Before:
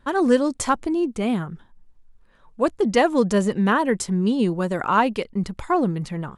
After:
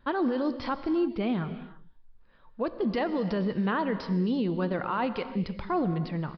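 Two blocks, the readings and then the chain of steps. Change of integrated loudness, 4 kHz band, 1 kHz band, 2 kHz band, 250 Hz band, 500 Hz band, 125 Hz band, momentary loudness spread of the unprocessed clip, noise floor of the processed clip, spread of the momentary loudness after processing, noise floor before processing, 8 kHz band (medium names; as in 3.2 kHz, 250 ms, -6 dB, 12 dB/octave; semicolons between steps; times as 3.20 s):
-7.5 dB, -8.0 dB, -9.0 dB, -9.0 dB, -6.5 dB, -8.5 dB, -5.0 dB, 8 LU, -56 dBFS, 5 LU, -55 dBFS, under -30 dB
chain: peak limiter -16.5 dBFS, peak gain reduction 11.5 dB; gated-style reverb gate 360 ms flat, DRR 10.5 dB; resampled via 11.025 kHz; trim -4 dB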